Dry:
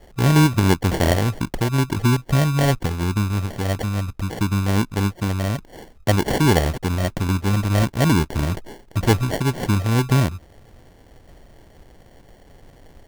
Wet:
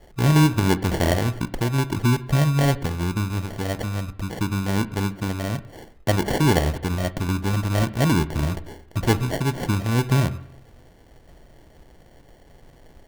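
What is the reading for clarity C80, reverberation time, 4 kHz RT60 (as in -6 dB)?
19.0 dB, 0.85 s, 0.90 s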